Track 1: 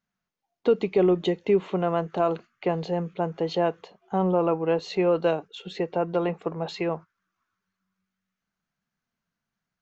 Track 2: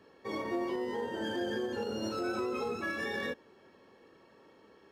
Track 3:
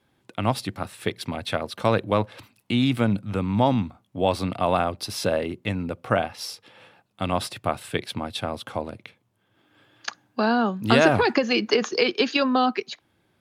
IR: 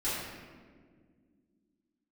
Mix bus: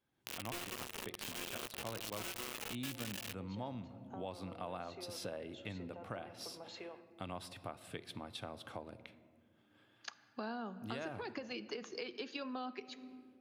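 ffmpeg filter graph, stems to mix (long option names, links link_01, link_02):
-filter_complex "[0:a]highpass=330,acompressor=threshold=-33dB:ratio=4,volume=-14.5dB,asplit=2[link_01][link_02];[link_02]volume=-17dB[link_03];[1:a]acrusher=bits=4:mix=0:aa=0.000001,equalizer=frequency=2800:width_type=o:width=0.6:gain=8,volume=1.5dB[link_04];[2:a]dynaudnorm=framelen=120:gausssize=3:maxgain=7dB,volume=-18.5dB,asplit=2[link_05][link_06];[link_06]volume=-22dB[link_07];[link_01][link_04]amix=inputs=2:normalize=0,highshelf=frequency=5800:gain=11,alimiter=limit=-19dB:level=0:latency=1,volume=0dB[link_08];[3:a]atrim=start_sample=2205[link_09];[link_03][link_07]amix=inputs=2:normalize=0[link_10];[link_10][link_09]afir=irnorm=-1:irlink=0[link_11];[link_05][link_08][link_11]amix=inputs=3:normalize=0,acompressor=threshold=-44dB:ratio=2.5"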